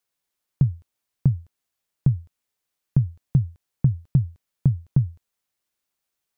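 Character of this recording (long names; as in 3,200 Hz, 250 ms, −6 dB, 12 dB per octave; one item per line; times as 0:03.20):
background noise floor −82 dBFS
spectral slope −17.5 dB per octave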